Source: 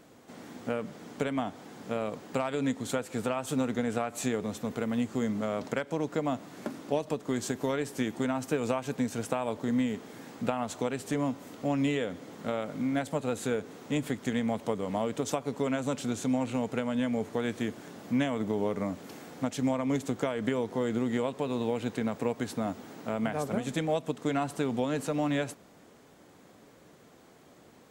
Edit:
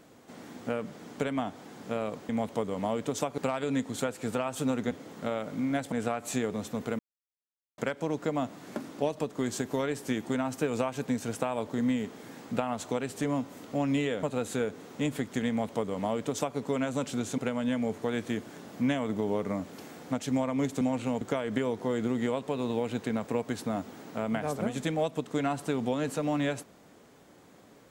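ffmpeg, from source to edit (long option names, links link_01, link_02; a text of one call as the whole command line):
ffmpeg -i in.wav -filter_complex "[0:a]asplit=11[link_01][link_02][link_03][link_04][link_05][link_06][link_07][link_08][link_09][link_10][link_11];[link_01]atrim=end=2.292[link_12];[link_02]atrim=start=14.398:end=15.492[link_13];[link_03]atrim=start=2.288:end=3.822[link_14];[link_04]atrim=start=12.128:end=13.142[link_15];[link_05]atrim=start=3.818:end=4.89,asetpts=PTS-STARTPTS,afade=type=out:start_time=1.068:duration=0.004:curve=hsin[link_16];[link_06]atrim=start=4.89:end=5.68,asetpts=PTS-STARTPTS,volume=0[link_17];[link_07]atrim=start=5.68:end=12.132,asetpts=PTS-STARTPTS,afade=type=in:duration=0.004:curve=hsin[link_18];[link_08]atrim=start=13.138:end=16.292[link_19];[link_09]atrim=start=16.688:end=20.122[link_20];[link_10]atrim=start=16.288:end=16.692[link_21];[link_11]atrim=start=20.118[link_22];[link_12][link_13]acrossfade=duration=0.004:curve1=hsin:curve2=hsin[link_23];[link_23][link_14]acrossfade=duration=0.004:curve1=hsin:curve2=hsin[link_24];[link_24][link_15]acrossfade=duration=0.004:curve1=hsin:curve2=hsin[link_25];[link_16][link_17][link_18]concat=n=3:v=0:a=1[link_26];[link_25][link_26]acrossfade=duration=0.004:curve1=hsin:curve2=hsin[link_27];[link_27][link_19]acrossfade=duration=0.004:curve1=hsin:curve2=hsin[link_28];[link_28][link_20]acrossfade=duration=0.004:curve1=hsin:curve2=hsin[link_29];[link_29][link_21]acrossfade=duration=0.004:curve1=hsin:curve2=hsin[link_30];[link_30][link_22]acrossfade=duration=0.004:curve1=hsin:curve2=hsin" out.wav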